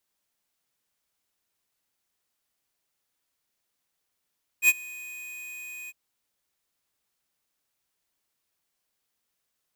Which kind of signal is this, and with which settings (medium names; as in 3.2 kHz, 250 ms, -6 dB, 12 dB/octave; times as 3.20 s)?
ADSR square 2.49 kHz, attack 67 ms, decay 37 ms, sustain -24 dB, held 1.27 s, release 35 ms -16 dBFS